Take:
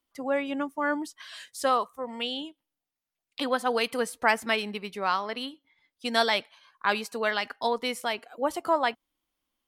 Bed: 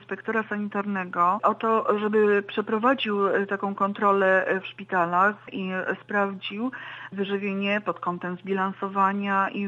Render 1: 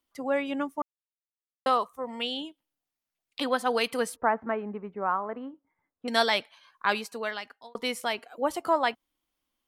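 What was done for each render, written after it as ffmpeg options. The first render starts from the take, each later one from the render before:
-filter_complex "[0:a]asettb=1/sr,asplit=3[s0][s1][s2];[s0]atrim=end=4.164[s3];[s1]atrim=start=4.16:end=6.08,asetpts=PTS-STARTPTS,afade=t=in:d=0.004:c=qsin,afade=t=out:st=1.916:d=0.004:c=qsin,lowpass=f=1400:w=0.5412,lowpass=f=1400:w=1.3066[s4];[s2]atrim=start=6.076[s5];[s3][s4]acrossfade=d=0.004:c1=hsin:c2=qsin[s6];[s6][s5]acrossfade=d=0.004:c1=qsin:c2=hsin,asplit=4[s7][s8][s9][s10];[s7]atrim=end=0.82,asetpts=PTS-STARTPTS,afade=t=out:st=0.816:d=0.004:c=hsin[s11];[s8]atrim=start=0.82:end=1.66,asetpts=PTS-STARTPTS,volume=0[s12];[s9]atrim=start=1.66:end=7.75,asetpts=PTS-STARTPTS,afade=t=in:d=0.004:c=hsin,afade=t=out:st=5.2:d=0.89[s13];[s10]atrim=start=7.75,asetpts=PTS-STARTPTS,afade=t=in:d=0.004:c=hsin[s14];[s11][s12][s13][s14]concat=n=4:v=0:a=1"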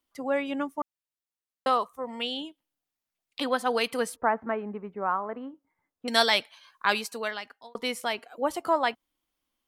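-filter_complex "[0:a]asettb=1/sr,asplit=3[s0][s1][s2];[s0]atrim=end=6.074[s3];[s1]atrim=start=6.07:end=7.28,asetpts=PTS-STARTPTS,afade=t=in:d=0.004:c=qsin,afade=t=out:st=1.206:d=0.004:c=qsin,highshelf=f=2800:g=6.5[s4];[s2]atrim=start=7.276[s5];[s3][s4]acrossfade=d=0.004:c1=hsin:c2=qsin[s6];[s6][s5]acrossfade=d=0.004:c1=qsin:c2=hsin"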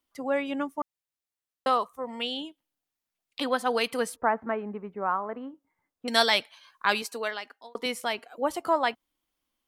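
-filter_complex "[0:a]asettb=1/sr,asplit=3[s0][s1][s2];[s0]atrim=end=7.024[s3];[s1]atrim=start=7.02:end=7.86,asetpts=PTS-STARTPTS,afade=t=in:d=0.004:c=qsin,afade=t=out:st=0.836:d=0.004:c=qsin,lowshelf=f=210:t=q:w=1.5:g=-8[s4];[s2]atrim=start=7.856[s5];[s3][s4]acrossfade=d=0.004:c1=hsin:c2=qsin[s6];[s6][s5]acrossfade=d=0.004:c1=qsin:c2=hsin"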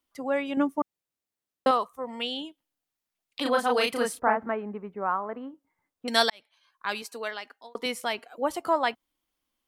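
-filter_complex "[0:a]asettb=1/sr,asplit=3[s0][s1][s2];[s0]atrim=end=0.574[s3];[s1]atrim=start=0.57:end=1.71,asetpts=PTS-STARTPTS,afade=t=in:d=0.004:c=qsin,afade=t=out:st=1.136:d=0.004:c=qsin,equalizer=f=250:w=0.44:g=8[s4];[s2]atrim=start=1.706[s5];[s3][s4]acrossfade=d=0.004:c1=hsin:c2=qsin[s6];[s6][s5]acrossfade=d=0.004:c1=qsin:c2=hsin,asettb=1/sr,asplit=3[s7][s8][s9];[s7]atrim=end=3.424[s10];[s8]atrim=start=3.42:end=4.49,asetpts=PTS-STARTPTS,afade=t=in:d=0.004:c=qsin,afade=t=out:st=1.066:d=0.004:c=qsin,asplit=2[s11][s12];[s12]adelay=33,volume=0.794[s13];[s11][s13]amix=inputs=2:normalize=0,atrim=end_sample=47187[s14];[s9]atrim=start=4.486[s15];[s10][s14]acrossfade=d=0.004:c1=hsin:c2=qsin[s16];[s16][s15]acrossfade=d=0.004:c1=qsin:c2=hsin,asplit=2[s17][s18];[s17]atrim=end=6.3,asetpts=PTS-STARTPTS,afade=t=out:st=6.296:d=0.004:c=hsin[s19];[s18]atrim=start=6.3,asetpts=PTS-STARTPTS,afade=t=in:d=1.25[s20];[s19][s20]concat=n=2:v=0:a=1"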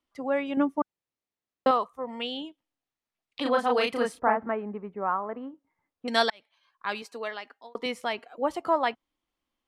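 -af "aemphasis=mode=reproduction:type=50fm,bandreject=f=1500:w=23"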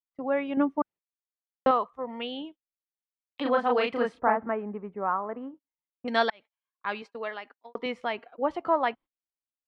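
-af "lowpass=2800,agate=range=0.0447:threshold=0.00501:ratio=16:detection=peak"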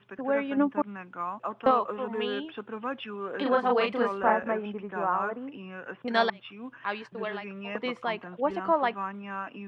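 -filter_complex "[1:a]volume=0.237[s0];[0:a][s0]amix=inputs=2:normalize=0"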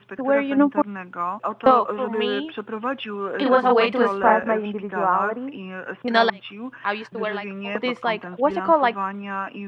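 -af "volume=2.37,alimiter=limit=0.708:level=0:latency=1"

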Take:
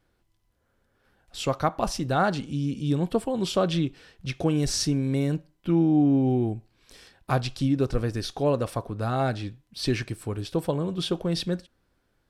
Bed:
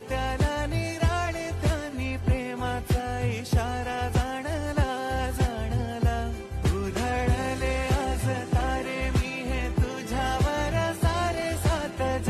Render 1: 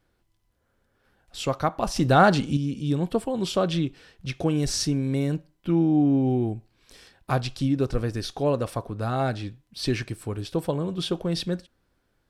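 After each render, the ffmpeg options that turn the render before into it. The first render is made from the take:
-filter_complex "[0:a]asettb=1/sr,asplit=3[s0][s1][s2];[s0]atrim=end=1.964[s3];[s1]atrim=start=1.96:end=2.57,asetpts=PTS-STARTPTS,afade=t=in:d=0.004:c=qsin,afade=t=out:st=0.606:d=0.004:c=qsin,acontrast=78[s4];[s2]atrim=start=2.566[s5];[s3][s4]acrossfade=d=0.004:c1=hsin:c2=qsin[s6];[s6][s5]acrossfade=d=0.004:c1=qsin:c2=hsin"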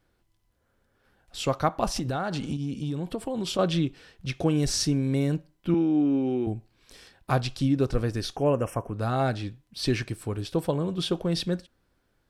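-filter_complex "[0:a]asettb=1/sr,asplit=3[s0][s1][s2];[s0]atrim=end=1.984[s3];[s1]atrim=start=1.98:end=3.59,asetpts=PTS-STARTPTS,afade=t=in:d=0.004:c=qsin,afade=t=out:st=1.606:d=0.004:c=qsin,acompressor=threshold=0.0562:ratio=16:attack=3.2:release=140:knee=1:detection=peak[s4];[s2]atrim=start=3.586[s5];[s3][s4]acrossfade=d=0.004:c1=hsin:c2=qsin[s6];[s6][s5]acrossfade=d=0.004:c1=qsin:c2=hsin,asettb=1/sr,asplit=3[s7][s8][s9];[s7]atrim=end=5.744[s10];[s8]atrim=start=5.74:end=6.47,asetpts=PTS-STARTPTS,afade=t=in:d=0.004:c=qsin,afade=t=out:st=0.726:d=0.004:c=qsin,highpass=260,equalizer=f=710:t=q:w=4:g=-9,equalizer=f=1300:t=q:w=4:g=5,equalizer=f=2600:t=q:w=4:g=6,equalizer=f=7200:t=q:w=4:g=-4,lowpass=f=9300:w=0.5412,lowpass=f=9300:w=1.3066[s11];[s9]atrim=start=6.466[s12];[s10][s11]acrossfade=d=0.004:c1=hsin:c2=qsin[s13];[s13][s12]acrossfade=d=0.004:c1=qsin:c2=hsin,asettb=1/sr,asplit=3[s14][s15][s16];[s14]atrim=end=8.364[s17];[s15]atrim=start=8.36:end=8.94,asetpts=PTS-STARTPTS,afade=t=in:d=0.004:c=qsin,afade=t=out:st=0.576:d=0.004:c=qsin,asuperstop=centerf=4100:order=12:qfactor=1.8[s18];[s16]atrim=start=8.936[s19];[s17][s18]acrossfade=d=0.004:c1=hsin:c2=qsin[s20];[s20][s19]acrossfade=d=0.004:c1=qsin:c2=hsin"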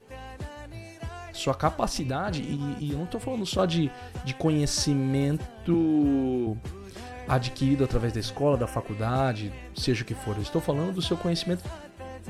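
-filter_complex "[1:a]volume=0.211[s0];[0:a][s0]amix=inputs=2:normalize=0"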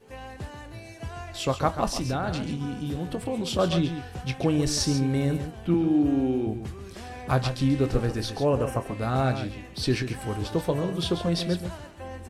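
-filter_complex "[0:a]asplit=2[s0][s1];[s1]adelay=23,volume=0.224[s2];[s0][s2]amix=inputs=2:normalize=0,asplit=2[s3][s4];[s4]aecho=0:1:137:0.335[s5];[s3][s5]amix=inputs=2:normalize=0"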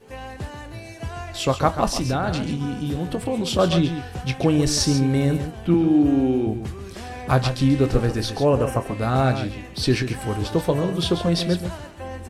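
-af "volume=1.78"

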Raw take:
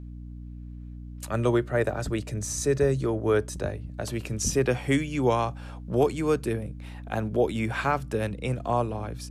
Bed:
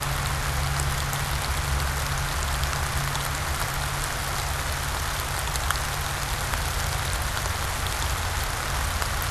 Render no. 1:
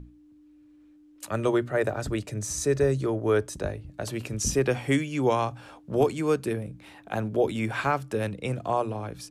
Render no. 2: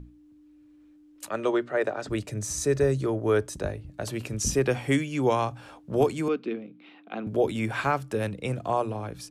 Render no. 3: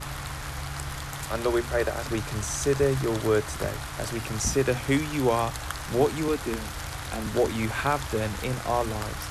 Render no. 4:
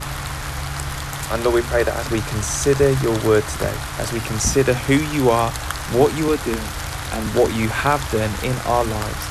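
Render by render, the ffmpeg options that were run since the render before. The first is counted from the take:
-af "bandreject=f=60:t=h:w=6,bandreject=f=120:t=h:w=6,bandreject=f=180:t=h:w=6,bandreject=f=240:t=h:w=6"
-filter_complex "[0:a]asplit=3[s0][s1][s2];[s0]afade=t=out:st=1.28:d=0.02[s3];[s1]highpass=270,lowpass=5700,afade=t=in:st=1.28:d=0.02,afade=t=out:st=2.09:d=0.02[s4];[s2]afade=t=in:st=2.09:d=0.02[s5];[s3][s4][s5]amix=inputs=3:normalize=0,asettb=1/sr,asplit=3[s6][s7][s8];[s6]atrim=end=6.284[s9];[s7]atrim=start=6.28:end=7.27,asetpts=PTS-STARTPTS,afade=t=in:d=0.004:c=qsin,afade=t=out:st=0.986:d=0.004:c=qsin,highpass=f=230:w=0.5412,highpass=f=230:w=1.3066,equalizer=f=240:t=q:w=4:g=4,equalizer=f=410:t=q:w=4:g=-3,equalizer=f=590:t=q:w=4:g=-8,equalizer=f=910:t=q:w=4:g=-9,equalizer=f=1700:t=q:w=4:g=-9,lowpass=f=3600:w=0.5412,lowpass=f=3600:w=1.3066[s10];[s8]atrim=start=7.266[s11];[s9][s10]acrossfade=d=0.004:c1=hsin:c2=qsin[s12];[s12][s11]acrossfade=d=0.004:c1=qsin:c2=hsin"
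-filter_complex "[1:a]volume=0.376[s0];[0:a][s0]amix=inputs=2:normalize=0"
-af "volume=2.37"

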